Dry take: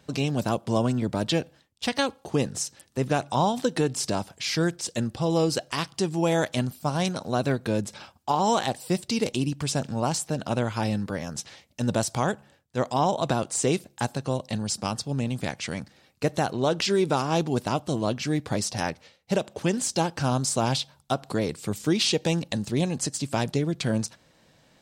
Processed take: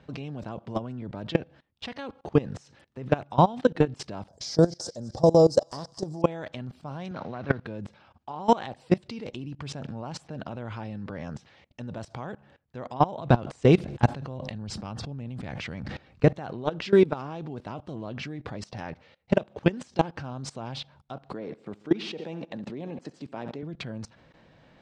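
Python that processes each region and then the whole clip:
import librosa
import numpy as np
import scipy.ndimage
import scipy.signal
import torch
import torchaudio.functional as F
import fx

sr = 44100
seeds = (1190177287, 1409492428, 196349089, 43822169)

y = fx.chain(x, sr, fx.curve_eq(hz=(390.0, 590.0, 2600.0, 5200.0), db=(0, 8, -22, 12)),
    fx.echo_wet_highpass(ms=216, feedback_pct=53, hz=1500.0, wet_db=-13.0), at=(4.28, 6.22))
y = fx.chain(y, sr, fx.cvsd(bps=32000),
    fx.highpass(hz=74.0, slope=24),
    fx.dynamic_eq(hz=1300.0, q=1.0, threshold_db=-43.0, ratio=4.0, max_db=6), at=(7.11, 7.66))
y = fx.chain(y, sr, fx.low_shelf(hz=110.0, db=9.0),
    fx.sustainer(db_per_s=66.0), at=(13.18, 16.33))
y = fx.chain(y, sr, fx.highpass(hz=230.0, slope=12),
    fx.high_shelf(hz=2000.0, db=-8.5),
    fx.echo_feedback(ms=68, feedback_pct=51, wet_db=-15.5), at=(21.33, 23.63))
y = scipy.signal.sosfilt(scipy.signal.butter(2, 2700.0, 'lowpass', fs=sr, output='sos'), y)
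y = fx.low_shelf(y, sr, hz=110.0, db=3.0)
y = fx.level_steps(y, sr, step_db=21)
y = F.gain(torch.from_numpy(y), 6.0).numpy()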